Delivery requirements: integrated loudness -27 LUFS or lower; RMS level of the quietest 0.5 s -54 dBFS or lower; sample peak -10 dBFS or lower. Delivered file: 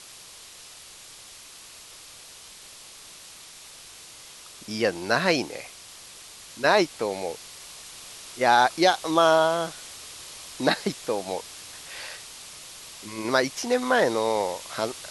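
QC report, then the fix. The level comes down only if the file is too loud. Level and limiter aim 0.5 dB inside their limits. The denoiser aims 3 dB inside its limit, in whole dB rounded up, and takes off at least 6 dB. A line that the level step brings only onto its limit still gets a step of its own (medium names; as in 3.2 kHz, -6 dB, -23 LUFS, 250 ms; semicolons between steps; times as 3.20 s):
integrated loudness -24.5 LUFS: fail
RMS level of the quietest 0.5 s -46 dBFS: fail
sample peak -6.0 dBFS: fail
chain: noise reduction 8 dB, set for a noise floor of -46 dBFS; trim -3 dB; peak limiter -10.5 dBFS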